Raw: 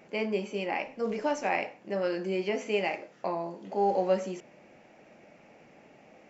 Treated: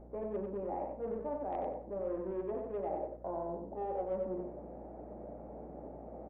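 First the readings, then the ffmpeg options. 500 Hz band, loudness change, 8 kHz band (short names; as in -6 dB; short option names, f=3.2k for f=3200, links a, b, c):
-6.5 dB, -9.0 dB, n/a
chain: -filter_complex "[0:a]acrossover=split=440|910[a][b][c];[a]asoftclip=type=tanh:threshold=-38dB[d];[c]acrusher=bits=2:mix=0:aa=0.5[e];[d][b][e]amix=inputs=3:normalize=0,aemphasis=mode=reproduction:type=75kf,areverse,acompressor=threshold=-47dB:ratio=5,areverse,aecho=1:1:93|186|279:0.596|0.131|0.0288,aeval=exprs='val(0)+0.00112*(sin(2*PI*60*n/s)+sin(2*PI*2*60*n/s)/2+sin(2*PI*3*60*n/s)/3+sin(2*PI*4*60*n/s)/4+sin(2*PI*5*60*n/s)/5)':c=same,aresample=8000,aresample=44100,equalizer=f=110:w=0.72:g=-8,volume=10dB"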